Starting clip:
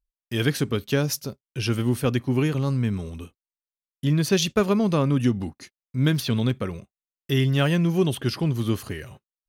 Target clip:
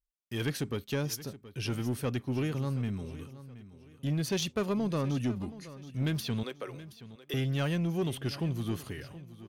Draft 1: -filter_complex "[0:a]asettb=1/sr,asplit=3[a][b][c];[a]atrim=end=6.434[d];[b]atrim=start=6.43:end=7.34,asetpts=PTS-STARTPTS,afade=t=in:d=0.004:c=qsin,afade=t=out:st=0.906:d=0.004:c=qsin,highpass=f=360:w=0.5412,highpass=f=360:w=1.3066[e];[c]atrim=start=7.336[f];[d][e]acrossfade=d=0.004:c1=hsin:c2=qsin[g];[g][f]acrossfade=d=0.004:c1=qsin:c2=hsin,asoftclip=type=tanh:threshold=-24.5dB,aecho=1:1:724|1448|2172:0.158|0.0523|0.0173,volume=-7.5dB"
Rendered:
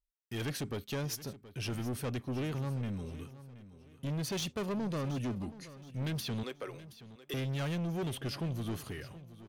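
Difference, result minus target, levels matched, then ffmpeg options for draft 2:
soft clip: distortion +8 dB
-filter_complex "[0:a]asettb=1/sr,asplit=3[a][b][c];[a]atrim=end=6.434[d];[b]atrim=start=6.43:end=7.34,asetpts=PTS-STARTPTS,afade=t=in:d=0.004:c=qsin,afade=t=out:st=0.906:d=0.004:c=qsin,highpass=f=360:w=0.5412,highpass=f=360:w=1.3066[e];[c]atrim=start=7.336[f];[d][e]acrossfade=d=0.004:c1=hsin:c2=qsin[g];[g][f]acrossfade=d=0.004:c1=qsin:c2=hsin,asoftclip=type=tanh:threshold=-16dB,aecho=1:1:724|1448|2172:0.158|0.0523|0.0173,volume=-7.5dB"

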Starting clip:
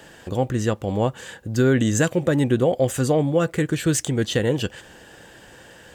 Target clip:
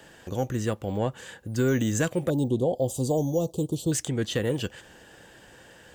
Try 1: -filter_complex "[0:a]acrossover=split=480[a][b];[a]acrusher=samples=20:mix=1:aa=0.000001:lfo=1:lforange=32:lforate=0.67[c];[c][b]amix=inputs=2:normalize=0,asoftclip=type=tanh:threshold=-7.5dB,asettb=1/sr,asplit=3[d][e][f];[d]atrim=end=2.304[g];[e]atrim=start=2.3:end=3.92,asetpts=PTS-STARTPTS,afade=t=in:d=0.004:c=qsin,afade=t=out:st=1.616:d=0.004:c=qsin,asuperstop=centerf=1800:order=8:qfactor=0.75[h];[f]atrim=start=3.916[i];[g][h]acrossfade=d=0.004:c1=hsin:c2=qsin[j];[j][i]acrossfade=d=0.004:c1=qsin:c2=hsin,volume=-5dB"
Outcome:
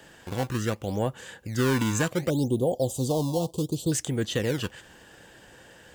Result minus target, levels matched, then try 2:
decimation with a swept rate: distortion +15 dB
-filter_complex "[0:a]acrossover=split=480[a][b];[a]acrusher=samples=4:mix=1:aa=0.000001:lfo=1:lforange=6.4:lforate=0.67[c];[c][b]amix=inputs=2:normalize=0,asoftclip=type=tanh:threshold=-7.5dB,asettb=1/sr,asplit=3[d][e][f];[d]atrim=end=2.304[g];[e]atrim=start=2.3:end=3.92,asetpts=PTS-STARTPTS,afade=t=in:d=0.004:c=qsin,afade=t=out:st=1.616:d=0.004:c=qsin,asuperstop=centerf=1800:order=8:qfactor=0.75[h];[f]atrim=start=3.916[i];[g][h]acrossfade=d=0.004:c1=hsin:c2=qsin[j];[j][i]acrossfade=d=0.004:c1=qsin:c2=hsin,volume=-5dB"

